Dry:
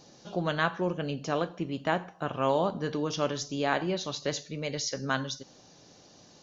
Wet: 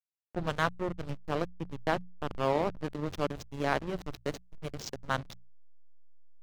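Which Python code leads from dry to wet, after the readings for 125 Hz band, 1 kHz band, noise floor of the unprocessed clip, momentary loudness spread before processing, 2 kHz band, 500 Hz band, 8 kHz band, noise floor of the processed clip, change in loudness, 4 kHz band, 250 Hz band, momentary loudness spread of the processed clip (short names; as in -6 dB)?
-2.5 dB, -2.5 dB, -57 dBFS, 7 LU, -3.5 dB, -3.5 dB, n/a, under -85 dBFS, -3.5 dB, -7.5 dB, -4.5 dB, 10 LU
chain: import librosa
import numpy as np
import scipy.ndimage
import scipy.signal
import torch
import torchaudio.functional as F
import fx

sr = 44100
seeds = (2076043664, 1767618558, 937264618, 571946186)

y = fx.backlash(x, sr, play_db=-23.0)
y = fx.hum_notches(y, sr, base_hz=60, count=3)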